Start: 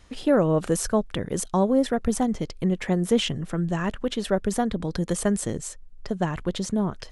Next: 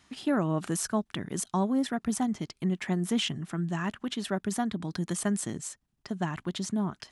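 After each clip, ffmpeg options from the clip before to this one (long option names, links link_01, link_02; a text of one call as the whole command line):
ffmpeg -i in.wav -af "highpass=140,equalizer=frequency=500:width_type=o:width=0.47:gain=-14.5,volume=-3dB" out.wav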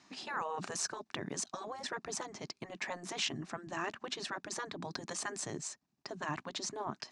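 ffmpeg -i in.wav -af "highpass=200,equalizer=frequency=470:width_type=q:width=4:gain=-4,equalizer=frequency=1400:width_type=q:width=4:gain=-5,equalizer=frequency=2000:width_type=q:width=4:gain=-4,equalizer=frequency=3200:width_type=q:width=4:gain=-9,lowpass=frequency=6700:width=0.5412,lowpass=frequency=6700:width=1.3066,afftfilt=real='re*lt(hypot(re,im),0.0891)':imag='im*lt(hypot(re,im),0.0891)':win_size=1024:overlap=0.75,volume=2.5dB" out.wav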